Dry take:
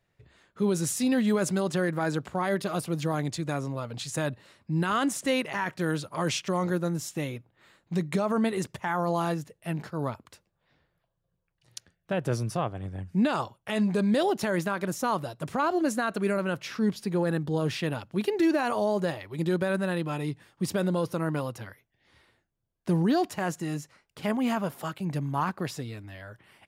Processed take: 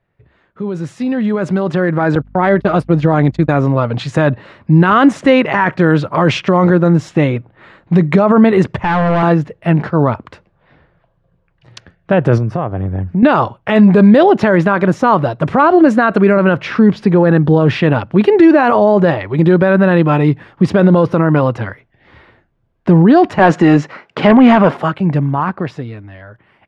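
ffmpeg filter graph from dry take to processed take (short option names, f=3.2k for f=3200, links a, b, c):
-filter_complex "[0:a]asettb=1/sr,asplit=3[a][b][c];[a]atrim=end=2.154[d];[b]atrim=start=2.15:end=3.62,asetpts=PTS-STARTPTS,afade=t=in:d=0.004:c=qsin,afade=t=out:st=1.466:d=0.004:c=qsin,bandreject=f=1.1k:w=22,agate=range=-37dB:threshold=-34dB:ratio=16:release=100:detection=peak,aeval=exprs='val(0)+0.00126*(sin(2*PI*50*n/s)+sin(2*PI*2*50*n/s)/2+sin(2*PI*3*50*n/s)/3+sin(2*PI*4*50*n/s)/4+sin(2*PI*5*50*n/s)/5)':c=same[e];[c]atrim=start=3.616[f];[d][e]acrossfade=d=0.004:c1=hsin:c2=qsin[g];[g][f]acrossfade=d=0.004:c1=qsin:c2=hsin,asettb=1/sr,asplit=3[h][i][j];[h]atrim=end=8.774[k];[i]atrim=start=8.77:end=9.23,asetpts=PTS-STARTPTS,afade=t=in:d=0.004:c=qsin,afade=t=out:st=0.456:d=0.004:c=qsin,lowshelf=f=110:g=11.5,volume=31dB,asoftclip=hard,volume=-31dB[l];[j]atrim=start=9.226[m];[k][l]acrossfade=d=0.004:c1=hsin:c2=qsin[n];[n][m]acrossfade=d=0.004:c1=qsin:c2=hsin,asettb=1/sr,asplit=3[o][p][q];[o]atrim=end=12.384[r];[p]atrim=start=12.38:end=13.23,asetpts=PTS-STARTPTS,afade=t=in:d=0.004:c=qsin,afade=t=out:st=0.846:d=0.004:c=qsin,highshelf=f=2k:g=-9,acompressor=threshold=-36dB:ratio=2.5:attack=3.2:release=140:knee=1:detection=peak[s];[q]atrim=start=13.226[t];[r][s]acrossfade=d=0.004:c1=hsin:c2=qsin[u];[u][t]acrossfade=d=0.004:c1=qsin:c2=hsin,asettb=1/sr,asplit=3[v][w][x];[v]atrim=end=23.394[y];[w]atrim=start=23.39:end=24.77,asetpts=PTS-STARTPTS,afade=t=in:d=0.004:c=qsin,afade=t=out:st=1.376:d=0.004:c=qsin,highpass=210,lowpass=7.3k,aeval=exprs='0.15*sin(PI/2*1.78*val(0)/0.15)':c=same[z];[x]atrim=start=24.766[aa];[y][z]acrossfade=d=0.004:c1=hsin:c2=qsin[ab];[ab][aa]acrossfade=d=0.004:c1=qsin:c2=hsin,lowpass=2.1k,alimiter=limit=-21dB:level=0:latency=1:release=30,dynaudnorm=f=210:g=17:m=13dB,volume=7dB"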